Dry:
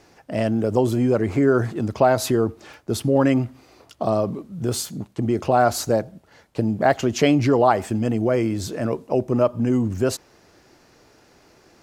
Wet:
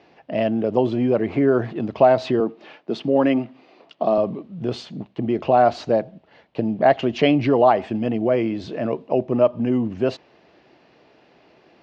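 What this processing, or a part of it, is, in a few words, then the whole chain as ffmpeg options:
guitar cabinet: -filter_complex "[0:a]highpass=99,equalizer=frequency=100:width_type=q:width=4:gain=-9,equalizer=frequency=660:width_type=q:width=4:gain=4,equalizer=frequency=1400:width_type=q:width=4:gain=-5,equalizer=frequency=2800:width_type=q:width=4:gain=4,lowpass=frequency=3900:width=0.5412,lowpass=frequency=3900:width=1.3066,asettb=1/sr,asplit=3[link_01][link_02][link_03];[link_01]atrim=end=2.404[link_04];[link_02]atrim=start=2.4:end=4.18,asetpts=PTS-STARTPTS,afade=type=in:duration=0.004:curve=qsin,afade=type=out:start_time=1.776:duration=0.004:curve=qsin,highpass=frequency=160:width=0.5412,highpass=frequency=160:width=1.3066[link_05];[link_03]atrim=start=4.176[link_06];[link_04][link_05]acrossfade=duration=0.004:curve1=hsin:curve2=qsin[link_07];[link_07][link_06]acrossfade=duration=0.004:curve1=qsin:curve2=hsin"

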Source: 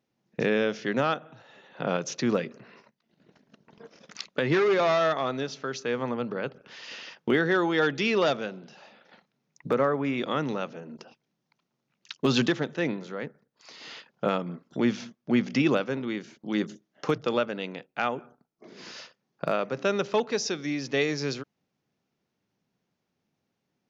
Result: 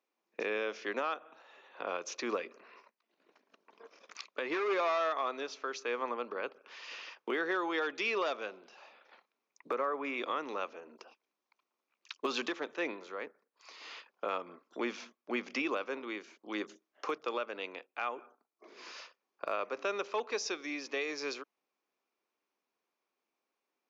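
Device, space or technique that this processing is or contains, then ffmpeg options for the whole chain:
laptop speaker: -af "highpass=frequency=320:width=0.5412,highpass=frequency=320:width=1.3066,equalizer=frequency=1100:width_type=o:width=0.47:gain=8.5,equalizer=frequency=2400:width_type=o:width=0.23:gain=7,alimiter=limit=-17dB:level=0:latency=1:release=186,volume=-6.5dB"

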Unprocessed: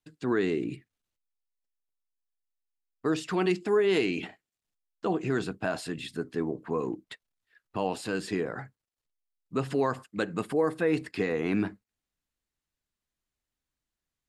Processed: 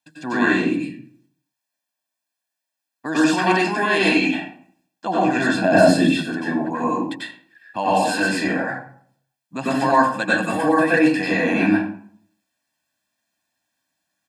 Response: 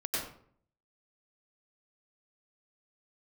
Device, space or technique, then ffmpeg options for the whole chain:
microphone above a desk: -filter_complex "[0:a]highpass=270,asettb=1/sr,asplit=3[link_01][link_02][link_03];[link_01]atrim=end=5.564[link_04];[link_02]atrim=start=5.56:end=6.02,asetpts=PTS-STARTPTS,afade=type=in:duration=0.004:curve=qsin,afade=type=out:start_time=0.456:duration=0.004:curve=qsin,lowshelf=frequency=650:width_type=q:width=1.5:gain=10[link_05];[link_03]atrim=start=6.016[link_06];[link_04][link_05]acrossfade=duration=0.004:curve1=hsin:curve2=qsin[link_07];[link_07][link_06]acrossfade=duration=0.004:curve1=qsin:curve2=hsin,aecho=1:1:1.2:0.87[link_08];[1:a]atrim=start_sample=2205[link_09];[link_08][link_09]afir=irnorm=-1:irlink=0,volume=7dB"

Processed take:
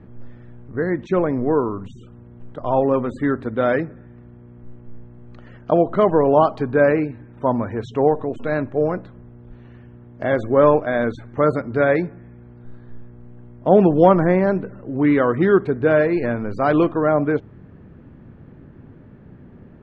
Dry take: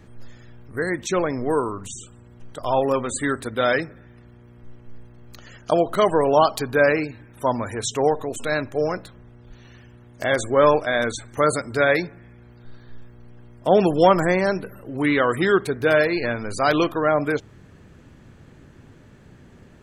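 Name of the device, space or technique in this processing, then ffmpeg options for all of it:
phone in a pocket: -af "lowpass=3700,equalizer=frequency=210:width_type=o:width=1.7:gain=4.5,highshelf=frequency=2400:gain=-11.5,highshelf=frequency=4100:gain=-9.5,volume=2dB"

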